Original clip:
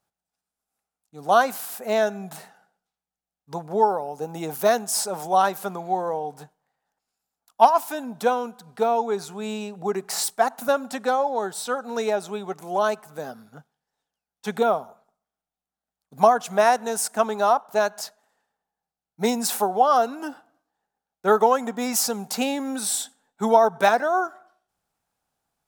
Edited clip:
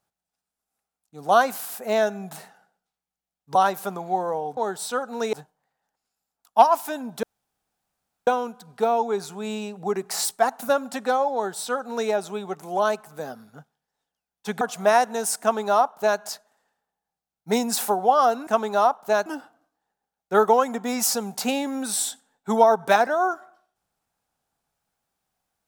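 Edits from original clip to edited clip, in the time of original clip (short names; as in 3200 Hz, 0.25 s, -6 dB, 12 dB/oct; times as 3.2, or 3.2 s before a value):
3.55–5.34 cut
8.26 insert room tone 1.04 s
11.33–12.09 copy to 6.36
14.6–16.33 cut
17.13–17.92 copy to 20.19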